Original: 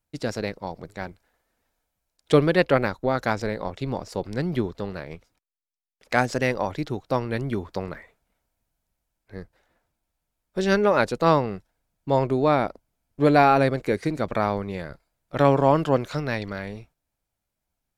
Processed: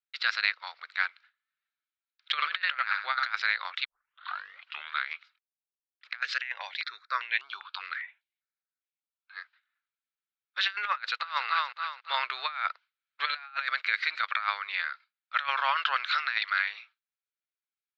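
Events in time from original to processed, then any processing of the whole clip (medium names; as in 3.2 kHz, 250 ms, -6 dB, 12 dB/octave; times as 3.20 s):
2.35–3.28 s: flutter echo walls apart 11.9 m, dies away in 0.42 s
3.85 s: tape start 1.27 s
6.21–9.37 s: stepped phaser 5 Hz 220–4600 Hz
10.92–11.44 s: echo throw 280 ms, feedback 40%, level -9 dB
12.14–13.50 s: three bands compressed up and down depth 40%
whole clip: elliptic band-pass 1.3–4.1 kHz, stop band 70 dB; gate with hold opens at -54 dBFS; compressor with a negative ratio -36 dBFS, ratio -0.5; trim +7.5 dB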